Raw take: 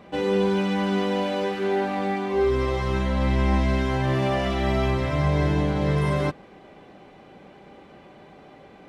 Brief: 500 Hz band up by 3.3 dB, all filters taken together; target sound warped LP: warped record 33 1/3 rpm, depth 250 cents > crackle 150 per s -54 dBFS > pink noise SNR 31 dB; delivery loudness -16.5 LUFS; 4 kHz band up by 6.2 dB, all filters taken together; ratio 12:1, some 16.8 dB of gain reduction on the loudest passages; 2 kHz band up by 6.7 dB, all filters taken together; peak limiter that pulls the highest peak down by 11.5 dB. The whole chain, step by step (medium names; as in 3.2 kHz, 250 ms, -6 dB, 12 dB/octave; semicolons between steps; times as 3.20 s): peaking EQ 500 Hz +4 dB; peaking EQ 2 kHz +6.5 dB; peaking EQ 4 kHz +5.5 dB; compression 12:1, threshold -33 dBFS; peak limiter -34 dBFS; warped record 33 1/3 rpm, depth 250 cents; crackle 150 per s -54 dBFS; pink noise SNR 31 dB; trim +26.5 dB